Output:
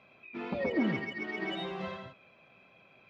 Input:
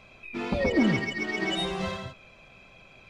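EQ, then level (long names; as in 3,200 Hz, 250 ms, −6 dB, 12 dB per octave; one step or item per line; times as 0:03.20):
band-pass filter 150–3,000 Hz
−6.0 dB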